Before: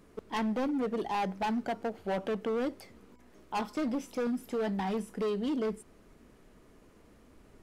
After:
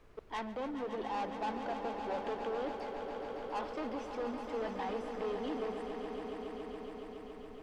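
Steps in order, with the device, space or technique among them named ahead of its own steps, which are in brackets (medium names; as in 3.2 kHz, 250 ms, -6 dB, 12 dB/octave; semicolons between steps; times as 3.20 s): aircraft cabin announcement (band-pass 410–3800 Hz; saturation -30.5 dBFS, distortion -14 dB; brown noise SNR 17 dB); echo with a slow build-up 140 ms, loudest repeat 5, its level -10 dB; trim -1.5 dB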